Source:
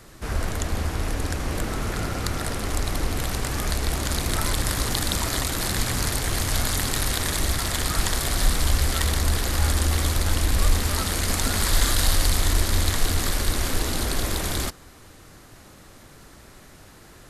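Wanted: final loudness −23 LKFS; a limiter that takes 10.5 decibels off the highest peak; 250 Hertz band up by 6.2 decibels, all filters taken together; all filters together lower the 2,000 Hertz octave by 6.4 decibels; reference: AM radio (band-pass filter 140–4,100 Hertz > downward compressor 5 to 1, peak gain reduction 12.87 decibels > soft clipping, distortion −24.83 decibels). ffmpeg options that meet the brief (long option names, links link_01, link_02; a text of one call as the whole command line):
ffmpeg -i in.wav -af "equalizer=frequency=250:width_type=o:gain=8.5,equalizer=frequency=2000:width_type=o:gain=-8,alimiter=limit=-17dB:level=0:latency=1,highpass=140,lowpass=4100,acompressor=threshold=-39dB:ratio=5,asoftclip=threshold=-30.5dB,volume=19.5dB" out.wav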